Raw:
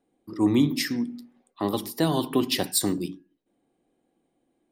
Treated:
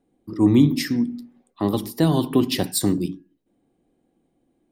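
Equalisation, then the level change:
low-shelf EQ 280 Hz +10.5 dB
0.0 dB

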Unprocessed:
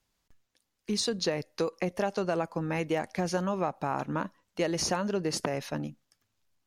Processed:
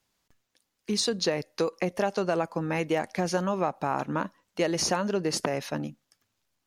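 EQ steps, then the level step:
low-shelf EQ 80 Hz −10 dB
+3.0 dB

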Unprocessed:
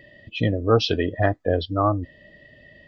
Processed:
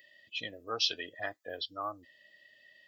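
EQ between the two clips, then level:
first difference
+2.5 dB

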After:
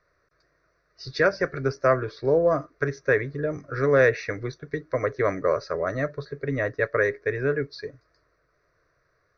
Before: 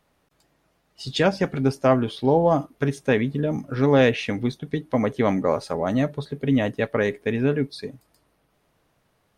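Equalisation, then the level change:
Chebyshev low-pass with heavy ripple 6,100 Hz, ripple 6 dB
phaser with its sweep stopped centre 840 Hz, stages 6
+5.5 dB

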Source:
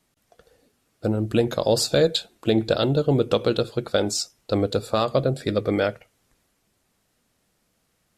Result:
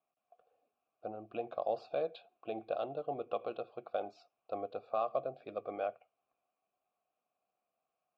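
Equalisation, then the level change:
formant filter a
high-frequency loss of the air 260 metres
−2.5 dB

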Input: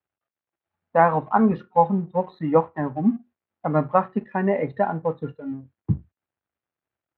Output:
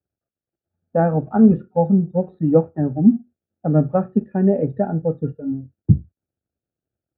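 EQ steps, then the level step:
moving average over 43 samples
low-shelf EQ 200 Hz +4.5 dB
+6.0 dB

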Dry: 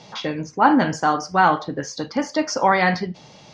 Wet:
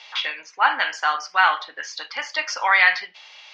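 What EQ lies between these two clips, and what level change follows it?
high-pass filter 1,000 Hz 12 dB per octave
low-pass with resonance 2,700 Hz, resonance Q 1.6
spectral tilt +4 dB per octave
0.0 dB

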